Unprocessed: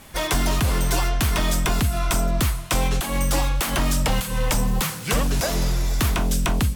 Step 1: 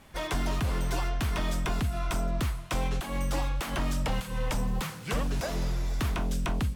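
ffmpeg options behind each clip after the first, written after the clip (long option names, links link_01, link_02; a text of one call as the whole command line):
ffmpeg -i in.wav -af "aemphasis=mode=reproduction:type=cd,volume=-8dB" out.wav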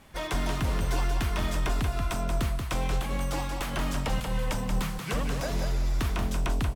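ffmpeg -i in.wav -af "aecho=1:1:182:0.531" out.wav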